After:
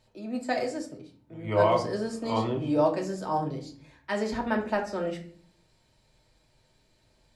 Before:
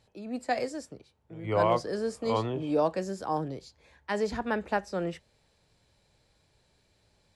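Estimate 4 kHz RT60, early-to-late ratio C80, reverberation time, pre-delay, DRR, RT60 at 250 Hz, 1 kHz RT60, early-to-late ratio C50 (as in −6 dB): 0.35 s, 15.5 dB, 0.50 s, 3 ms, 0.5 dB, 0.80 s, 0.45 s, 10.5 dB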